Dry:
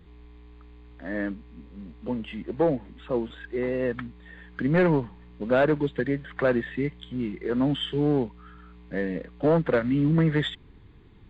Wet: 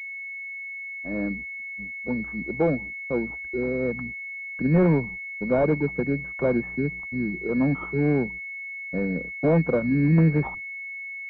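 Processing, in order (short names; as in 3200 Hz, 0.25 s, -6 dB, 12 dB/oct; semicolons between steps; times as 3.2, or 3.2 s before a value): dynamic EQ 180 Hz, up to +5 dB, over -40 dBFS, Q 2; gate -38 dBFS, range -51 dB; pulse-width modulation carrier 2200 Hz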